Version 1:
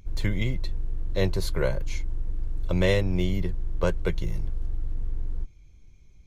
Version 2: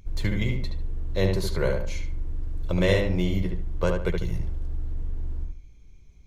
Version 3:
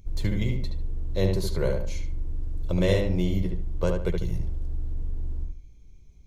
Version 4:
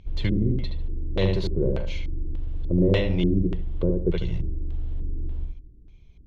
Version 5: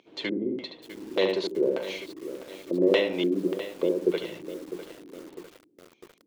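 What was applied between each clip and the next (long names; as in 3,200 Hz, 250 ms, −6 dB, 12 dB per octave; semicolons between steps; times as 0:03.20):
feedback echo with a low-pass in the loop 73 ms, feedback 31%, low-pass 3,000 Hz, level −3.5 dB
parametric band 1,700 Hz −6.5 dB 1.9 octaves
asymmetric clip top −14.5 dBFS; auto-filter low-pass square 1.7 Hz 330–3,200 Hz; level +1.5 dB
high-pass filter 290 Hz 24 dB per octave; feedback echo at a low word length 652 ms, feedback 55%, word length 7 bits, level −12 dB; level +2.5 dB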